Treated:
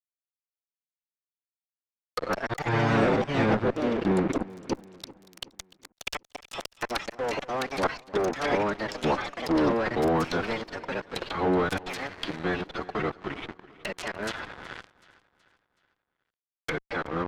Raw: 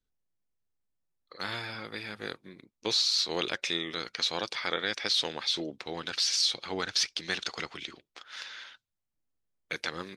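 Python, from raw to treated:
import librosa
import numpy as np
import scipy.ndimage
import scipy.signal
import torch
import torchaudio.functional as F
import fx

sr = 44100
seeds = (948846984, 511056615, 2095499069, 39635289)

p1 = fx.doppler_pass(x, sr, speed_mps=10, closest_m=7.5, pass_at_s=2.92)
p2 = fx.dynamic_eq(p1, sr, hz=1900.0, q=0.71, threshold_db=-54.0, ratio=4.0, max_db=-6)
p3 = fx.stretch_vocoder(p2, sr, factor=1.7)
p4 = fx.gate_flip(p3, sr, shuts_db=-35.0, range_db=-38)
p5 = fx.fuzz(p4, sr, gain_db=62.0, gate_db=-58.0)
p6 = fx.env_lowpass_down(p5, sr, base_hz=1300.0, full_db=-21.5)
p7 = p6 + fx.echo_feedback(p6, sr, ms=374, feedback_pct=46, wet_db=-19.5, dry=0)
p8 = fx.echo_pitch(p7, sr, ms=606, semitones=4, count=2, db_per_echo=-3.0)
y = F.gain(torch.from_numpy(p8), -7.0).numpy()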